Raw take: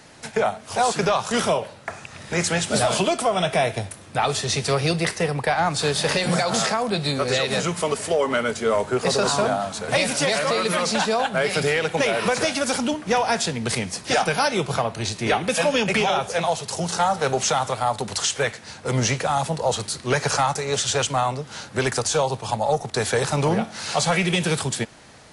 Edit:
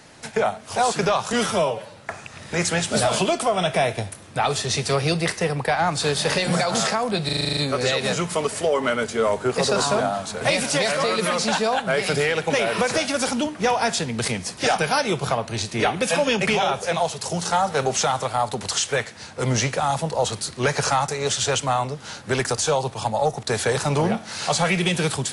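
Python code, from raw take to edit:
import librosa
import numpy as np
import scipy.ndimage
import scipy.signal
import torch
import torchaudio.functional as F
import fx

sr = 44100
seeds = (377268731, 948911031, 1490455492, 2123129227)

y = fx.edit(x, sr, fx.stretch_span(start_s=1.33, length_s=0.42, factor=1.5),
    fx.stutter(start_s=7.04, slice_s=0.04, count=9), tone=tone)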